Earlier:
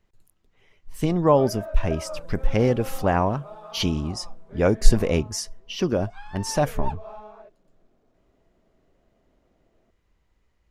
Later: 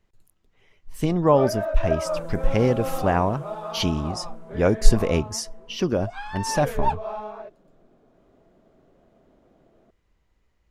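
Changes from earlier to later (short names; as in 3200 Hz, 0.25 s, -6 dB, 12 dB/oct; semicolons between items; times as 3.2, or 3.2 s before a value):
first sound +8.5 dB; second sound +9.5 dB; reverb: on, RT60 0.80 s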